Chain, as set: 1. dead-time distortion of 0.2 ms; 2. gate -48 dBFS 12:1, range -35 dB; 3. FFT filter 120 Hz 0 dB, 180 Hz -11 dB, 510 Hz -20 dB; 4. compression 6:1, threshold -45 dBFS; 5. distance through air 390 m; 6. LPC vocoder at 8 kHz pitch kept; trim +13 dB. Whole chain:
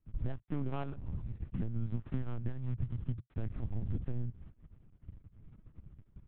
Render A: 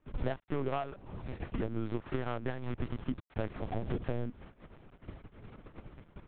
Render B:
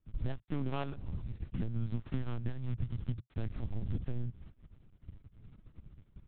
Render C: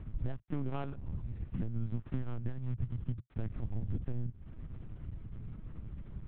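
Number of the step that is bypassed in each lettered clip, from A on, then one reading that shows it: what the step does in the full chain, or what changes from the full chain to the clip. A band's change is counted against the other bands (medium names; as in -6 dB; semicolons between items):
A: 3, 125 Hz band -13.5 dB; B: 5, 2 kHz band +3.0 dB; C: 2, momentary loudness spread change -10 LU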